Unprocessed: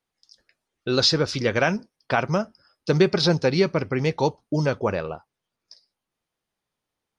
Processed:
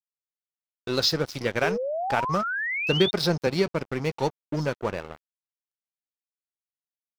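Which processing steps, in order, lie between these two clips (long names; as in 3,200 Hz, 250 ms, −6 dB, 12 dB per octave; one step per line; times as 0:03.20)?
0:03.06–0:03.47: high-pass filter 100 Hz 24 dB per octave
dead-zone distortion −31.5 dBFS
0:01.63–0:03.11: sound drawn into the spectrogram rise 390–3,700 Hz −26 dBFS
level −2.5 dB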